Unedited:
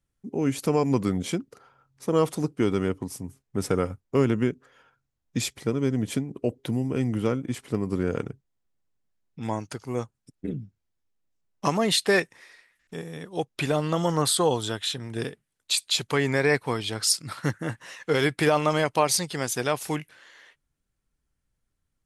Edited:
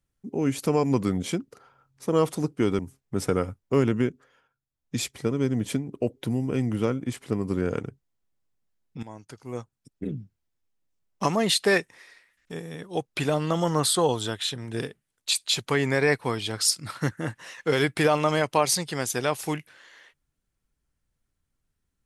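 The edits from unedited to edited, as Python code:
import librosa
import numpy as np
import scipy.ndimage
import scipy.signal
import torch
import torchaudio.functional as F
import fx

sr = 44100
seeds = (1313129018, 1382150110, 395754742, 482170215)

y = fx.edit(x, sr, fx.cut(start_s=2.79, length_s=0.42),
    fx.fade_down_up(start_s=4.5, length_s=0.99, db=-10.0, fade_s=0.41),
    fx.fade_in_from(start_s=9.45, length_s=1.07, floor_db=-16.5), tone=tone)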